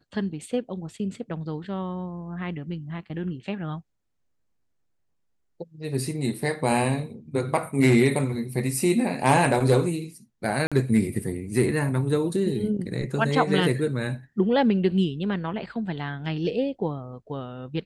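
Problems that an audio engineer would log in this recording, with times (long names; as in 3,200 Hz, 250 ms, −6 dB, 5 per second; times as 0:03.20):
0:10.67–0:10.72: drop-out 46 ms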